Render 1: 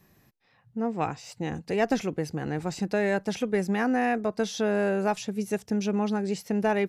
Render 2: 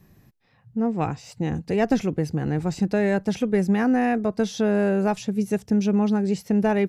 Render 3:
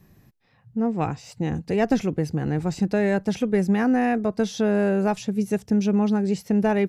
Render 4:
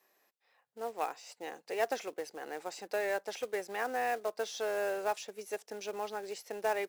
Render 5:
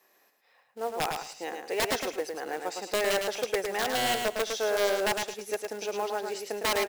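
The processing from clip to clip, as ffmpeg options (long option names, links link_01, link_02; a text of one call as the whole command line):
ffmpeg -i in.wav -af "lowshelf=frequency=290:gain=10.5" out.wav
ffmpeg -i in.wav -af anull out.wav
ffmpeg -i in.wav -af "highpass=frequency=480:width=0.5412,highpass=frequency=480:width=1.3066,acrusher=bits=4:mode=log:mix=0:aa=0.000001,volume=-6.5dB" out.wav
ffmpeg -i in.wav -filter_complex "[0:a]aeval=exprs='(mod(22.4*val(0)+1,2)-1)/22.4':channel_layout=same,asplit=2[link_01][link_02];[link_02]aecho=0:1:108|216|324:0.562|0.118|0.0248[link_03];[link_01][link_03]amix=inputs=2:normalize=0,volume=6dB" out.wav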